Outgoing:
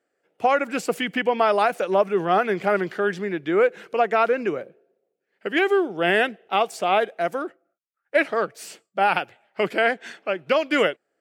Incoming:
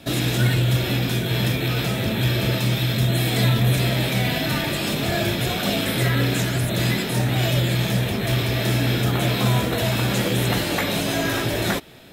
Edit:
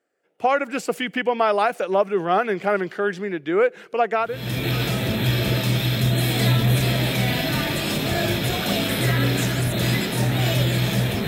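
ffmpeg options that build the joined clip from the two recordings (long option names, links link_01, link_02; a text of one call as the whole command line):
ffmpeg -i cue0.wav -i cue1.wav -filter_complex "[0:a]apad=whole_dur=11.27,atrim=end=11.27,atrim=end=4.64,asetpts=PTS-STARTPTS[link_01];[1:a]atrim=start=1.09:end=8.24,asetpts=PTS-STARTPTS[link_02];[link_01][link_02]acrossfade=duration=0.52:curve1=qua:curve2=qua" out.wav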